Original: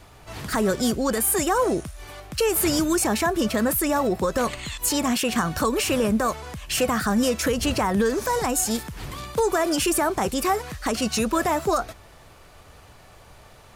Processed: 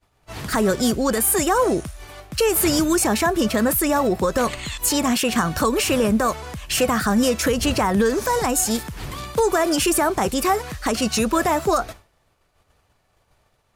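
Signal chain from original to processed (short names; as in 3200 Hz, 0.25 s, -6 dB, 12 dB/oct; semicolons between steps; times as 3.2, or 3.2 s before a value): expander -36 dBFS; gain +3 dB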